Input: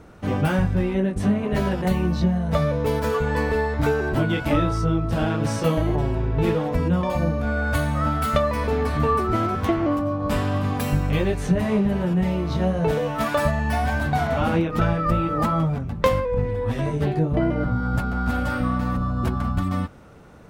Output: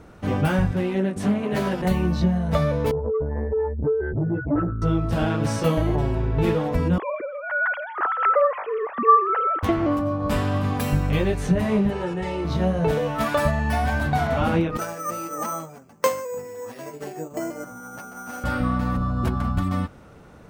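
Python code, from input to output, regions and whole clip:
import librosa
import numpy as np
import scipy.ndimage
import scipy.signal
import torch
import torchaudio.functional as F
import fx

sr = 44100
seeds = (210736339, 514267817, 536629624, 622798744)

y = fx.chain(x, sr, fx.highpass(hz=150.0, slope=12),
    fx.high_shelf(hz=6100.0, db=4.5),
    fx.doppler_dist(depth_ms=0.19), at=(0.71, 1.82))
y = fx.chain(y, sr, fx.spec_expand(power=3.5),
    fx.highpass(hz=54.0, slope=12),
    fx.transformer_sat(knee_hz=270.0), at=(2.91, 4.82))
y = fx.chain(y, sr, fx.sine_speech(),
    fx.echo_wet_highpass(ms=164, feedback_pct=71, hz=2100.0, wet_db=-14.5), at=(6.98, 9.63))
y = fx.chain(y, sr, fx.lowpass(hz=9500.0, slope=24),
    fx.low_shelf(hz=180.0, db=-10.5),
    fx.comb(ms=2.3, depth=0.63), at=(11.9, 12.45))
y = fx.chain(y, sr, fx.highpass(hz=340.0, slope=12),
    fx.resample_bad(factor=6, down='filtered', up='hold'),
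    fx.upward_expand(threshold_db=-37.0, expansion=1.5), at=(14.77, 18.44))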